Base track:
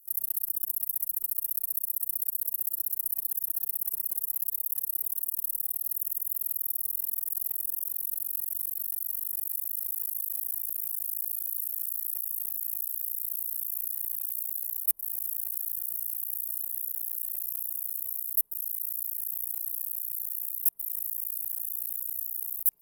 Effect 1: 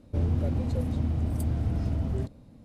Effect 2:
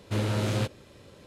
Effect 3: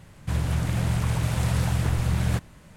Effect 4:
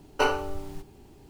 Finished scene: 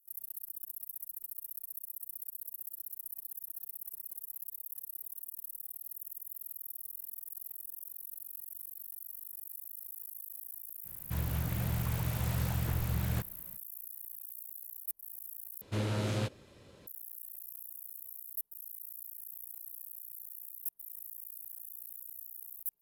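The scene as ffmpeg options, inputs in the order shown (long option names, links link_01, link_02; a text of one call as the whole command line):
ffmpeg -i bed.wav -i cue0.wav -i cue1.wav -i cue2.wav -filter_complex "[0:a]volume=-13dB,asplit=2[link_01][link_02];[link_01]atrim=end=15.614[link_03];[2:a]atrim=end=1.26,asetpts=PTS-STARTPTS,volume=-5.5dB[link_04];[link_02]atrim=start=16.866[link_05];[3:a]atrim=end=2.76,asetpts=PTS-STARTPTS,volume=-9dB,afade=type=in:duration=0.05,afade=type=out:start_time=2.71:duration=0.05,adelay=10830[link_06];[link_03][link_04]acrossfade=duration=0.004:curve1=hsin:curve2=hsin[link_07];[link_07][link_05]acrossfade=duration=0.004:curve1=hsin:curve2=hsin[link_08];[link_08][link_06]amix=inputs=2:normalize=0" out.wav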